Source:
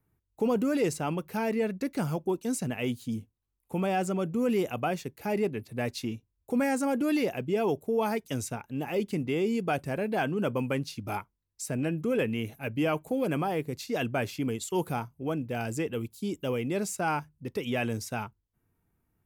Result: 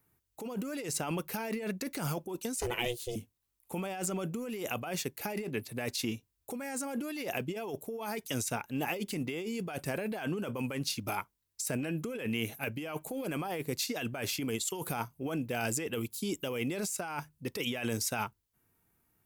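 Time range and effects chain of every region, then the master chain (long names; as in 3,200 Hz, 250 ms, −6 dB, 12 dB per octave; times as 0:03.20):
0:02.56–0:03.16: comb filter 6.8 ms, depth 43% + ring modulation 240 Hz
whole clip: spectral tilt +2 dB per octave; compressor whose output falls as the input rises −35 dBFS, ratio −1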